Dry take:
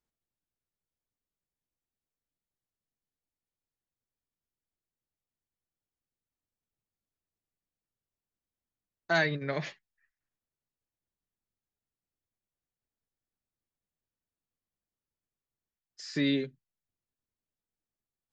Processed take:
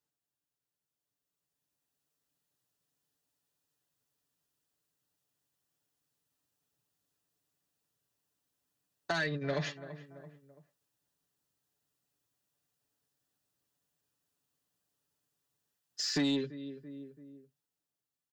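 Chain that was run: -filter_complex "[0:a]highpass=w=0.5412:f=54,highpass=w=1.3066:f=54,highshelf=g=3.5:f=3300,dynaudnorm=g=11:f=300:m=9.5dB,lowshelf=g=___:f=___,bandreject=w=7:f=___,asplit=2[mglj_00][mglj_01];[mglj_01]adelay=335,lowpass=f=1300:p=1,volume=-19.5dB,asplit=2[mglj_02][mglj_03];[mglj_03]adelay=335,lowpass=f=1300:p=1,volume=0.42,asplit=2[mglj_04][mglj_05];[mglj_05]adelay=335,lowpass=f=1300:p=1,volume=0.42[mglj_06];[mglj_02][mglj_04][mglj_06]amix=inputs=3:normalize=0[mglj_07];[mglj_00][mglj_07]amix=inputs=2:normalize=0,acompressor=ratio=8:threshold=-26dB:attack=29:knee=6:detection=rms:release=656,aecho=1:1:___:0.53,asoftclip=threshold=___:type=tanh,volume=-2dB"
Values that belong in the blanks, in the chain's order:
-5, 100, 2200, 6.9, -21.5dB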